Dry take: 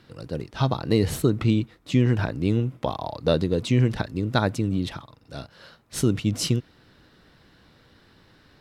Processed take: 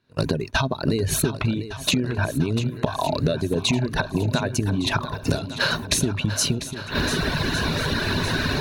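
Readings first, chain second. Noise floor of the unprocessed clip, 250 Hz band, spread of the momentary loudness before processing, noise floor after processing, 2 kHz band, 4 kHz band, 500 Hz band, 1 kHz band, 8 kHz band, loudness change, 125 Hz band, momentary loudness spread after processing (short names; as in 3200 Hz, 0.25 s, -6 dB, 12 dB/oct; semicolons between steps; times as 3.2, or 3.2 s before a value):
-58 dBFS, +0.5 dB, 13 LU, -36 dBFS, +10.5 dB, +9.0 dB, +1.0 dB, +4.5 dB, +9.5 dB, +1.0 dB, 0.0 dB, 4 LU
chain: recorder AGC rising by 68 dB/s; gate -29 dBFS, range -24 dB; reverb removal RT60 1.5 s; ripple EQ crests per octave 1.5, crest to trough 7 dB; compressor, threshold -25 dBFS, peak gain reduction 11.5 dB; on a send: swung echo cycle 1.159 s, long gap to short 1.5:1, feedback 48%, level -12 dB; on the sum: gain +6 dB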